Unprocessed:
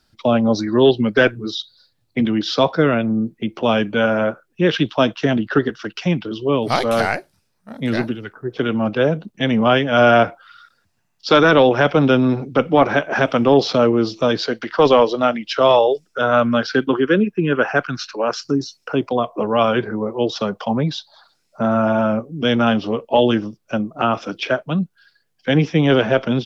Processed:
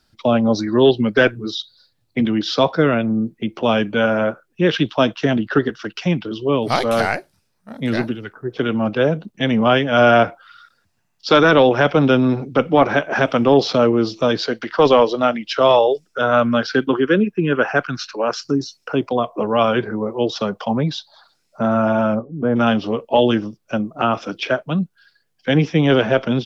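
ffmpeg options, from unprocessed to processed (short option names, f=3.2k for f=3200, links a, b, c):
-filter_complex "[0:a]asplit=3[a][b][c];[a]afade=t=out:st=22.14:d=0.02[d];[b]lowpass=f=1.3k:w=0.5412,lowpass=f=1.3k:w=1.3066,afade=t=in:st=22.14:d=0.02,afade=t=out:st=22.55:d=0.02[e];[c]afade=t=in:st=22.55:d=0.02[f];[d][e][f]amix=inputs=3:normalize=0"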